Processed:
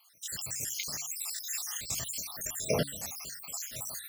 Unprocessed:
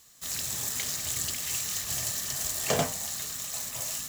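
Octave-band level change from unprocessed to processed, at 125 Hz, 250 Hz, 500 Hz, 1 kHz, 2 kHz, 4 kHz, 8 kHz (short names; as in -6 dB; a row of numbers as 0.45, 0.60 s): -2.0, -1.5, -1.5, -8.0, -5.5, -5.0, -5.0 dB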